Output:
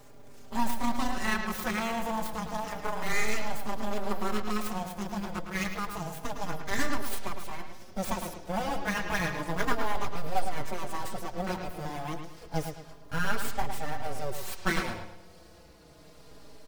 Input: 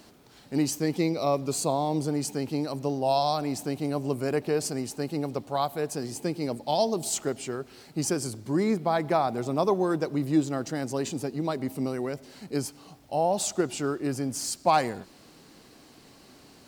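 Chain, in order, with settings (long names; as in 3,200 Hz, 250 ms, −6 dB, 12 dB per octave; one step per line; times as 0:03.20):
pitch glide at a constant tempo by +8 semitones ending unshifted
in parallel at −8 dB: sample-rate reduction 4,100 Hz
on the sum: noise in a band 42–370 Hz −50 dBFS
full-wave rectification
on a send: bucket-brigade delay 108 ms, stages 4,096, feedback 36%, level −7.5 dB
on the sum: barber-pole flanger 4.5 ms −0.3 Hz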